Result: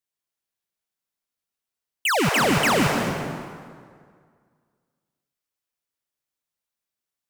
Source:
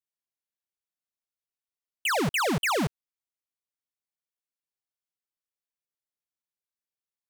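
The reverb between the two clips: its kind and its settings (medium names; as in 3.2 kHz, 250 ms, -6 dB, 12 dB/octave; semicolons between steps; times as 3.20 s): plate-style reverb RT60 2 s, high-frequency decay 0.7×, pre-delay 120 ms, DRR 2 dB; trim +4.5 dB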